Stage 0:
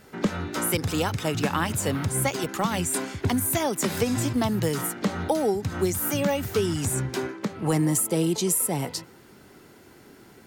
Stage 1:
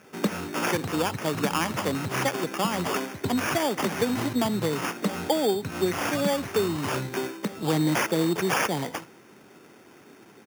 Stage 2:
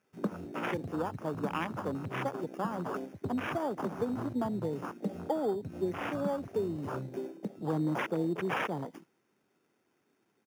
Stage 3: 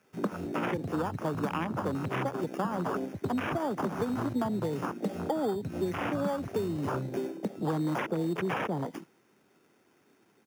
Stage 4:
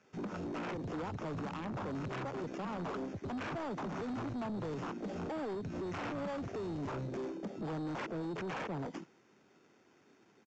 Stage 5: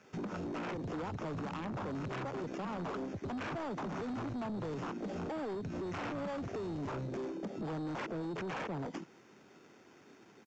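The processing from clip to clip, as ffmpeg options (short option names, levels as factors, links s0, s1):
-af "aecho=1:1:71:0.0944,acrusher=samples=11:mix=1:aa=0.000001,highpass=160"
-af "afwtdn=0.0398,volume=0.447"
-filter_complex "[0:a]acrossover=split=230|1000[s0][s1][s2];[s0]acompressor=threshold=0.00631:ratio=4[s3];[s1]acompressor=threshold=0.00794:ratio=4[s4];[s2]acompressor=threshold=0.00501:ratio=4[s5];[s3][s4][s5]amix=inputs=3:normalize=0,volume=2.82"
-af "alimiter=level_in=1.33:limit=0.0631:level=0:latency=1:release=25,volume=0.75,aresample=16000,asoftclip=type=tanh:threshold=0.0168,aresample=44100"
-af "acompressor=threshold=0.00501:ratio=3,volume=2.11"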